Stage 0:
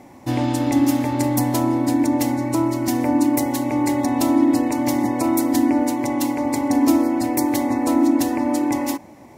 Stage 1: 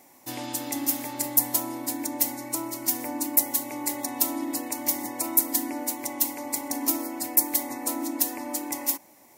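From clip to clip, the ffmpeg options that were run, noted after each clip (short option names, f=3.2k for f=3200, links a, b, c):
-af "aemphasis=mode=production:type=riaa,volume=-10dB"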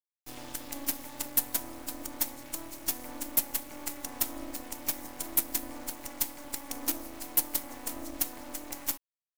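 -af "acrusher=bits=4:dc=4:mix=0:aa=0.000001,volume=-6dB"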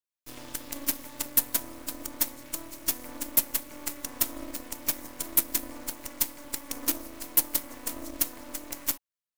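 -filter_complex "[0:a]asplit=2[a][b];[b]aeval=exprs='sgn(val(0))*max(abs(val(0))-0.0188,0)':c=same,volume=-4.5dB[c];[a][c]amix=inputs=2:normalize=0,asuperstop=centerf=790:order=4:qfactor=6.1"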